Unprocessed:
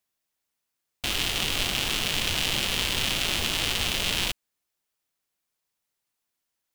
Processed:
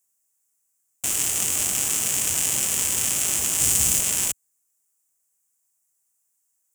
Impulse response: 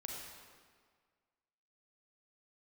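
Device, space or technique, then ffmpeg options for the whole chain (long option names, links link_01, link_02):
budget condenser microphone: -filter_complex "[0:a]highpass=73,highshelf=frequency=5500:width_type=q:width=3:gain=12,asettb=1/sr,asplit=3[link_01][link_02][link_03];[link_01]atrim=end=3.604[link_04];[link_02]atrim=start=3.6:end=4,asetpts=PTS-STARTPTS,afade=type=in:duration=0.004:curve=qsin,afade=type=out:start_time=0.396:duration=0.004:curve=qsin,bass=frequency=250:gain=8,treble=frequency=4000:gain=4[link_05];[link_03]atrim=start=3.996[link_06];[link_04][link_05]acrossfade=duration=0.004:curve1=hsin:curve2=qsin[link_07];[link_07][link_06]acrossfade=duration=0.004:curve1=qsin:curve2=hsin,volume=-3dB"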